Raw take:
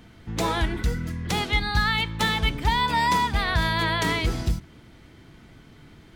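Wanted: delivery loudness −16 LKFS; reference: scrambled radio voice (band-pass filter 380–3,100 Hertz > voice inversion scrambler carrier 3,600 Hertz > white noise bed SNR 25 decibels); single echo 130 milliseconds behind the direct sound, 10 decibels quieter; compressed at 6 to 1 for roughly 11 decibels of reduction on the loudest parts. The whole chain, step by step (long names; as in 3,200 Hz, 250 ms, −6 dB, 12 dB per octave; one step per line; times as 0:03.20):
downward compressor 6 to 1, threshold −30 dBFS
band-pass filter 380–3,100 Hz
single-tap delay 130 ms −10 dB
voice inversion scrambler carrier 3,600 Hz
white noise bed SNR 25 dB
level +18 dB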